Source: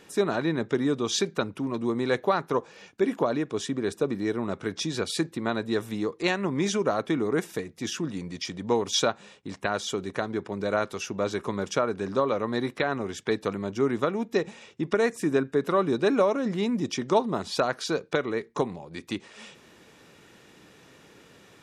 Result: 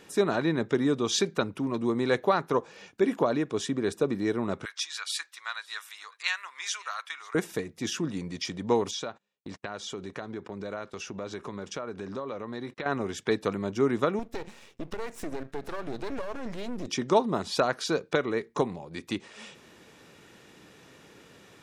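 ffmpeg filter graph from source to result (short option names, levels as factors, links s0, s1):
-filter_complex "[0:a]asettb=1/sr,asplit=3[s0][s1][s2];[s0]atrim=end=4.654[s3];[s1]atrim=start=4.65:end=7.35,asetpts=PTS-STARTPTS,afade=t=in:d=0.004:c=qsin,afade=t=out:st=2.696:d=0.004:c=qsin,highpass=f=1200:w=0.5412,highpass=f=1200:w=1.3066,aecho=1:1:546:0.0668,atrim=end_sample=119070[s4];[s2]atrim=start=7.346[s5];[s3][s4]acrossfade=d=0.004:c1=hsin:c2=qsin[s6];[s6][s5]acrossfade=d=0.004:c1=qsin:c2=hsin,asettb=1/sr,asplit=3[s7][s8][s9];[s7]atrim=end=8.914[s10];[s8]atrim=start=8.91:end=12.86,asetpts=PTS-STARTPTS,afade=t=in:d=0.004:c=qsin,afade=t=out:st=3.946:d=0.004:c=qsin,agate=range=0.02:threshold=0.00631:ratio=16:release=100:detection=peak,acompressor=threshold=0.0158:ratio=2.5:attack=3.2:release=140:knee=1:detection=peak,lowpass=7900[s11];[s9]atrim=start=12.856[s12];[s10][s11]acrossfade=d=0.004:c1=hsin:c2=qsin[s13];[s13][s12]acrossfade=d=0.004:c1=qsin:c2=hsin,asettb=1/sr,asplit=3[s14][s15][s16];[s14]atrim=end=14.194[s17];[s15]atrim=start=14.19:end=16.87,asetpts=PTS-STARTPTS,afade=t=in:d=0.004:c=qsin,afade=t=out:st=2.676:d=0.004:c=qsin,acompressor=threshold=0.0447:ratio=4:attack=3.2:release=140:knee=1:detection=peak,aeval=exprs='max(val(0),0)':c=same[s18];[s16]atrim=start=16.866[s19];[s17][s18]acrossfade=d=0.004:c1=hsin:c2=qsin[s20];[s20][s19]acrossfade=d=0.004:c1=qsin:c2=hsin"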